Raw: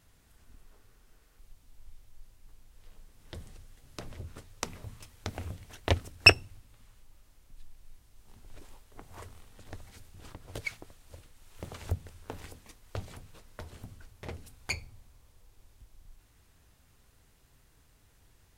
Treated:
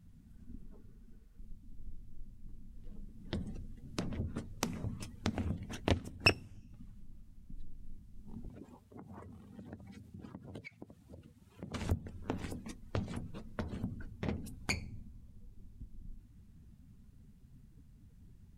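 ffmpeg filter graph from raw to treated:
-filter_complex "[0:a]asettb=1/sr,asplit=3[a][b][c];[a]atrim=end=8.484[d];[b]atrim=start=8.48:end=11.74,asetpts=PTS-STARTPTS,afade=t=in:d=0.004:c=qsin,afade=t=out:st=3.256:d=0.004:c=qsin,highpass=86,acompressor=threshold=-56dB:ratio=3:attack=3.2:release=140:knee=1:detection=peak[e];[c]atrim=start=11.736[f];[d][e]acrossfade=d=0.004:c1=hsin:c2=qsin[g];[g][f]acrossfade=d=0.004:c1=qsin:c2=hsin,afftdn=nr=17:nf=-59,equalizer=f=210:t=o:w=1.1:g=13.5,acompressor=threshold=-41dB:ratio=2,volume=4.5dB"

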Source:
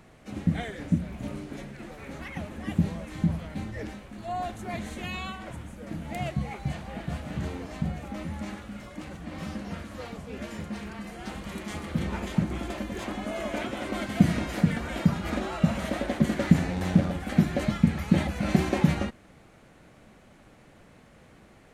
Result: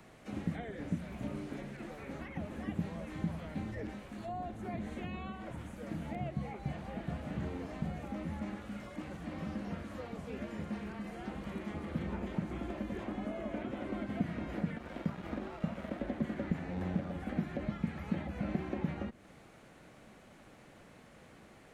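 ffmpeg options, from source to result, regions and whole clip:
-filter_complex "[0:a]asettb=1/sr,asplit=3[a][b][c];[a]atrim=end=14.774[d];[b]atrim=start=14.77:end=16.01,asetpts=PTS-STARTPTS,afade=t=in:d=0.004:c=qsin,afade=t=out:st=1.236:d=0.004:c=qsin,bandreject=f=60:t=h:w=6,bandreject=f=120:t=h:w=6,bandreject=f=180:t=h:w=6,bandreject=f=240:t=h:w=6,bandreject=f=300:t=h:w=6,bandreject=f=360:t=h:w=6,bandreject=f=420:t=h:w=6,aeval=exprs='sgn(val(0))*max(abs(val(0))-0.0133,0)':c=same[e];[c]atrim=start=16.006[f];[d][e]acrossfade=d=0.004:c1=hsin:c2=qsin[g];[g][f]acrossfade=d=0.004:c1=qsin:c2=hsin,acrossover=split=2900[h][i];[i]acompressor=threshold=-58dB:ratio=4:attack=1:release=60[j];[h][j]amix=inputs=2:normalize=0,lowshelf=f=110:g=-6.5,acrossover=split=270|630[k][l][m];[k]acompressor=threshold=-33dB:ratio=4[n];[l]acompressor=threshold=-42dB:ratio=4[o];[m]acompressor=threshold=-48dB:ratio=4[p];[n][o][p]amix=inputs=3:normalize=0,volume=-1.5dB"

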